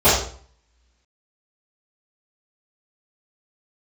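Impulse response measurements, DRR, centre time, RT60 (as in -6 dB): -17.5 dB, 48 ms, 0.50 s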